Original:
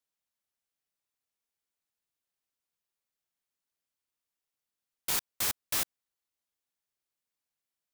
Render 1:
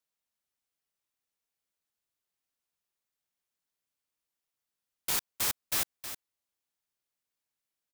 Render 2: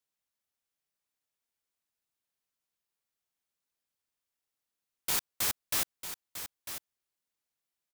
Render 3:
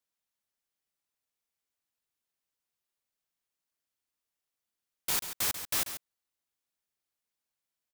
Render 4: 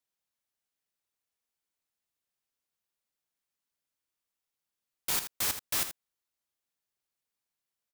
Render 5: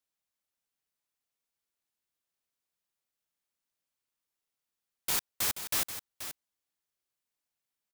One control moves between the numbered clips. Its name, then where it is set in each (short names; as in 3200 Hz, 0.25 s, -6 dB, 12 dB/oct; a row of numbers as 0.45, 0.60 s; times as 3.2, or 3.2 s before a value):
echo, time: 315, 949, 139, 80, 481 ms